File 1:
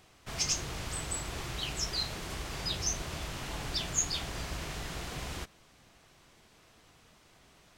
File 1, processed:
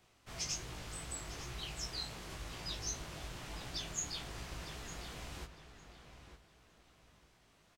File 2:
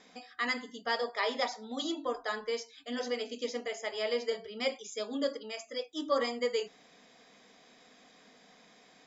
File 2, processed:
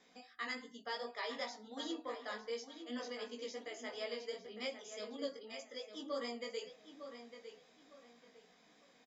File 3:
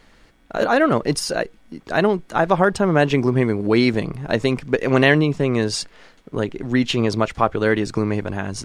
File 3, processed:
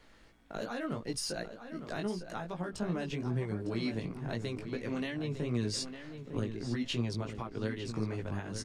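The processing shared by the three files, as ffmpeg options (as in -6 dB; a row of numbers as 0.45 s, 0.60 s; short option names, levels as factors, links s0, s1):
-filter_complex "[0:a]alimiter=limit=0.224:level=0:latency=1:release=452,acrossover=split=250|3000[s0][s1][s2];[s1]acompressor=threshold=0.0282:ratio=4[s3];[s0][s3][s2]amix=inputs=3:normalize=0,flanger=delay=16.5:depth=3.1:speed=2.7,asplit=2[s4][s5];[s5]adelay=905,lowpass=f=3800:p=1,volume=0.335,asplit=2[s6][s7];[s7]adelay=905,lowpass=f=3800:p=1,volume=0.29,asplit=2[s8][s9];[s9]adelay=905,lowpass=f=3800:p=1,volume=0.29[s10];[s6][s8][s10]amix=inputs=3:normalize=0[s11];[s4][s11]amix=inputs=2:normalize=0,volume=0.562"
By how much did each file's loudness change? -8.0 LU, -9.5 LU, -17.0 LU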